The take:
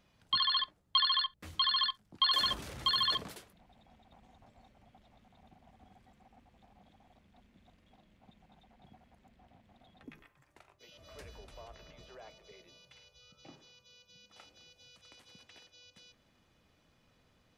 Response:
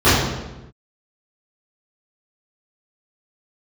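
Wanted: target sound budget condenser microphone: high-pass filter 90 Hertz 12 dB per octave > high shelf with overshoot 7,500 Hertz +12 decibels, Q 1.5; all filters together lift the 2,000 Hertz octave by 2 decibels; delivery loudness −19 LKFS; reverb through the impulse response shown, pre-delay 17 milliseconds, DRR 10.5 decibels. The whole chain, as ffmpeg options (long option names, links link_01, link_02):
-filter_complex "[0:a]equalizer=frequency=2000:width_type=o:gain=3,asplit=2[link_01][link_02];[1:a]atrim=start_sample=2205,adelay=17[link_03];[link_02][link_03]afir=irnorm=-1:irlink=0,volume=-37.5dB[link_04];[link_01][link_04]amix=inputs=2:normalize=0,highpass=90,highshelf=frequency=7500:width_type=q:width=1.5:gain=12,volume=11.5dB"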